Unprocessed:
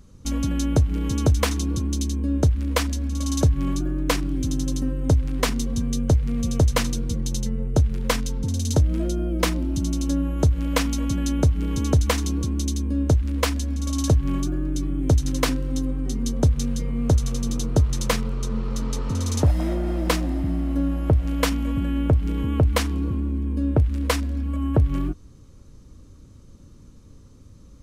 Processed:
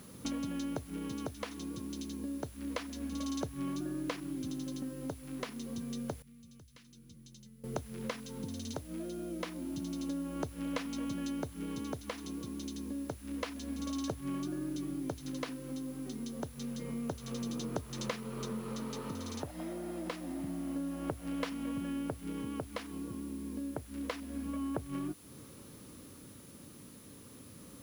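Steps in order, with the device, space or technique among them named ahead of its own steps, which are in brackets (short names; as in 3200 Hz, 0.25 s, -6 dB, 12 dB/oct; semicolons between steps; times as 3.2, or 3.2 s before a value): medium wave at night (BPF 190–4500 Hz; compressor 6:1, threshold -40 dBFS, peak gain reduction 21 dB; tremolo 0.28 Hz, depth 33%; whine 10000 Hz -64 dBFS; white noise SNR 21 dB); 6.22–7.64 passive tone stack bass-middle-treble 6-0-2; gain +4.5 dB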